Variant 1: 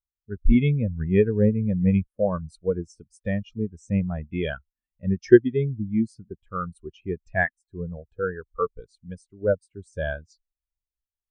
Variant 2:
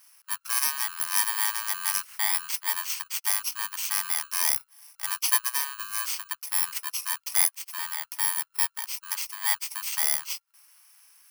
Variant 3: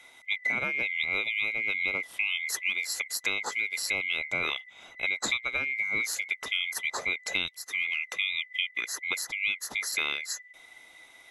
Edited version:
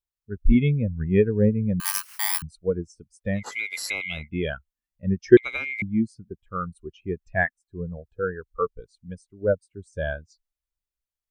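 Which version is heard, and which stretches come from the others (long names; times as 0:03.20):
1
0:01.80–0:02.42: punch in from 2
0:03.45–0:04.17: punch in from 3, crossfade 0.24 s
0:05.37–0:05.82: punch in from 3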